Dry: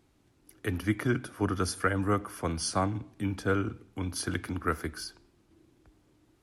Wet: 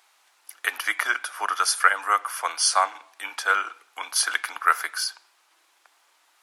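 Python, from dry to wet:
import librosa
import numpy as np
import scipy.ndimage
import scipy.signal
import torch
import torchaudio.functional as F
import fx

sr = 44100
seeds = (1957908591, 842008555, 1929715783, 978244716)

p1 = scipy.signal.sosfilt(scipy.signal.butter(4, 830.0, 'highpass', fs=sr, output='sos'), x)
p2 = fx.rider(p1, sr, range_db=4, speed_s=2.0)
p3 = p1 + (p2 * 10.0 ** (3.0 / 20.0))
y = p3 * 10.0 ** (4.5 / 20.0)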